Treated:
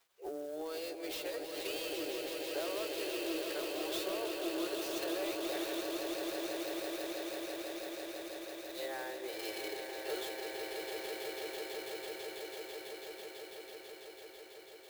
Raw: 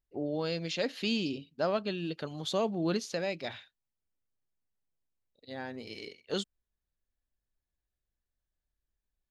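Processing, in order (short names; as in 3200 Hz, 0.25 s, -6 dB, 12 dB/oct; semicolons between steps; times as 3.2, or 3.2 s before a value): high shelf 9700 Hz +10.5 dB; crackle 440/s -62 dBFS; steep high-pass 310 Hz 96 dB/oct; compressor 16:1, threshold -42 dBFS, peak gain reduction 17 dB; time stretch by phase-locked vocoder 1.6×; soft clip -37.5 dBFS, distortion -21 dB; swelling echo 0.165 s, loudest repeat 8, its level -7.5 dB; clock jitter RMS 0.029 ms; gain +5 dB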